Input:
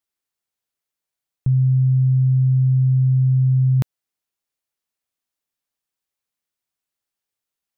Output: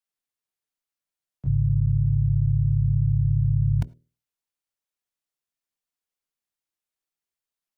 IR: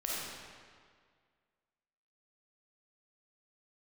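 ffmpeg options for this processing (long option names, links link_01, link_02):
-filter_complex "[0:a]afreqshift=-26,bandreject=frequency=60:width_type=h:width=6,bandreject=frequency=120:width_type=h:width=6,bandreject=frequency=180:width_type=h:width=6,bandreject=frequency=240:width_type=h:width=6,bandreject=frequency=300:width_type=h:width=6,bandreject=frequency=360:width_type=h:width=6,bandreject=frequency=420:width_type=h:width=6,asplit=4[link_01][link_02][link_03][link_04];[link_02]asetrate=22050,aresample=44100,atempo=2,volume=-6dB[link_05];[link_03]asetrate=58866,aresample=44100,atempo=0.749154,volume=-2dB[link_06];[link_04]asetrate=66075,aresample=44100,atempo=0.66742,volume=-17dB[link_07];[link_01][link_05][link_06][link_07]amix=inputs=4:normalize=0,asplit=2[link_08][link_09];[1:a]atrim=start_sample=2205,atrim=end_sample=3969,adelay=22[link_10];[link_09][link_10]afir=irnorm=-1:irlink=0,volume=-24.5dB[link_11];[link_08][link_11]amix=inputs=2:normalize=0,volume=-8dB"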